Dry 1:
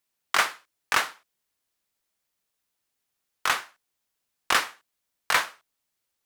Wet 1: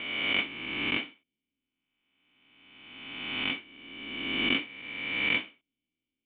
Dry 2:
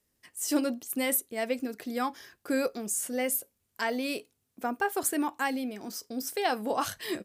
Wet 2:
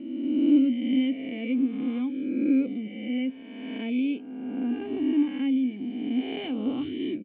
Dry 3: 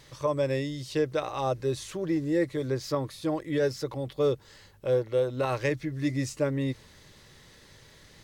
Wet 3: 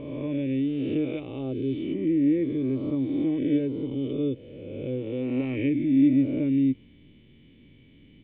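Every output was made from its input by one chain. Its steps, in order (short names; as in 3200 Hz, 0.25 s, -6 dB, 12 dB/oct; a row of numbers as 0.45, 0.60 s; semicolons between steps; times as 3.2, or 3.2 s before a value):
spectral swells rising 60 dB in 1.74 s; vocal tract filter i; notch 3300 Hz, Q 25; normalise peaks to -12 dBFS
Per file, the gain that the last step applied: +10.0, +8.5, +9.5 dB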